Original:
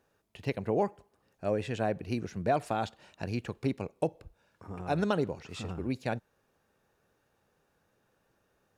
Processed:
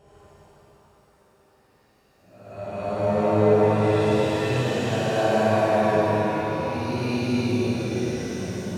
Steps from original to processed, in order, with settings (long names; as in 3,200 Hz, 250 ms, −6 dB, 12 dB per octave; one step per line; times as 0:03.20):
extreme stretch with random phases 6.2×, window 0.25 s, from 0:00.98
flutter between parallel walls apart 9.7 metres, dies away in 0.78 s
reverb with rising layers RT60 3.3 s, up +7 semitones, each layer −8 dB, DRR −6.5 dB